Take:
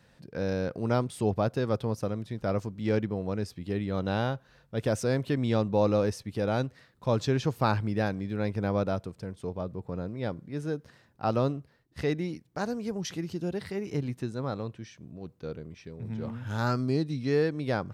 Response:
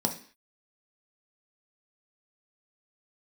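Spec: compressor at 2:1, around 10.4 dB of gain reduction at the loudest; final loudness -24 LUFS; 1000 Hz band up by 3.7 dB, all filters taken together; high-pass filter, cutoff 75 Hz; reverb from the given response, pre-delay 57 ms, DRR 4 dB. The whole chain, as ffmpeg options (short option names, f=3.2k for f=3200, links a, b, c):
-filter_complex "[0:a]highpass=75,equalizer=f=1k:t=o:g=5,acompressor=threshold=-39dB:ratio=2,asplit=2[a][b];[1:a]atrim=start_sample=2205,adelay=57[c];[b][c]afir=irnorm=-1:irlink=0,volume=-11.5dB[d];[a][d]amix=inputs=2:normalize=0,volume=10.5dB"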